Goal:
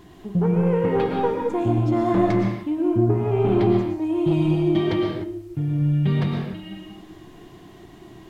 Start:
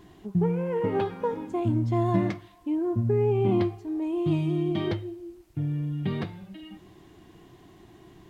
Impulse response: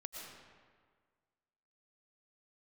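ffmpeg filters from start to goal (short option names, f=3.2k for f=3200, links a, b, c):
-filter_complex "[0:a]aeval=exprs='0.282*sin(PI/2*1.78*val(0)/0.282)':c=same,bandreject=f=103.6:t=h:w=4,bandreject=f=207.2:t=h:w=4,bandreject=f=310.8:t=h:w=4,bandreject=f=414.4:t=h:w=4,bandreject=f=518:t=h:w=4,bandreject=f=621.6:t=h:w=4,bandreject=f=725.2:t=h:w=4,bandreject=f=828.8:t=h:w=4,bandreject=f=932.4:t=h:w=4,bandreject=f=1.036k:t=h:w=4,bandreject=f=1.1396k:t=h:w=4,bandreject=f=1.2432k:t=h:w=4,bandreject=f=1.3468k:t=h:w=4,bandreject=f=1.4504k:t=h:w=4,bandreject=f=1.554k:t=h:w=4,bandreject=f=1.6576k:t=h:w=4,bandreject=f=1.7612k:t=h:w=4,bandreject=f=1.8648k:t=h:w=4,bandreject=f=1.9684k:t=h:w=4,bandreject=f=2.072k:t=h:w=4,bandreject=f=2.1756k:t=h:w=4,bandreject=f=2.2792k:t=h:w=4,bandreject=f=2.3828k:t=h:w=4,bandreject=f=2.4864k:t=h:w=4,bandreject=f=2.59k:t=h:w=4,bandreject=f=2.6936k:t=h:w=4,bandreject=f=2.7972k:t=h:w=4,bandreject=f=2.9008k:t=h:w=4,bandreject=f=3.0044k:t=h:w=4[a];[1:a]atrim=start_sample=2205,afade=t=out:st=0.36:d=0.01,atrim=end_sample=16317[b];[a][b]afir=irnorm=-1:irlink=0,volume=1.5dB"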